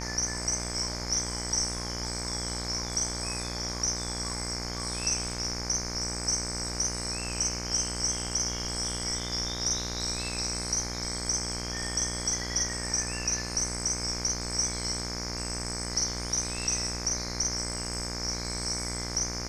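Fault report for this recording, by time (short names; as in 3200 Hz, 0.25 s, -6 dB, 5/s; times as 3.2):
buzz 60 Hz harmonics 40 -37 dBFS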